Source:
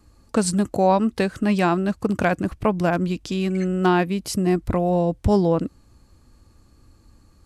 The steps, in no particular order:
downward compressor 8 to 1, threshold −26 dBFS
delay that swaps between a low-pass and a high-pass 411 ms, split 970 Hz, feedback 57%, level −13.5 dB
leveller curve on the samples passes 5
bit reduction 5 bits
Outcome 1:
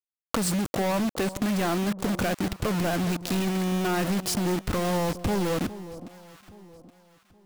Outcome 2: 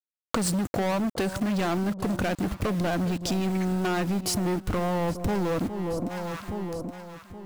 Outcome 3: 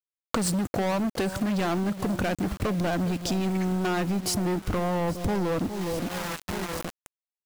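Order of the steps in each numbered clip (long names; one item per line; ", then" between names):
bit reduction, then leveller curve on the samples, then downward compressor, then delay that swaps between a low-pass and a high-pass
leveller curve on the samples, then bit reduction, then delay that swaps between a low-pass and a high-pass, then downward compressor
leveller curve on the samples, then delay that swaps between a low-pass and a high-pass, then bit reduction, then downward compressor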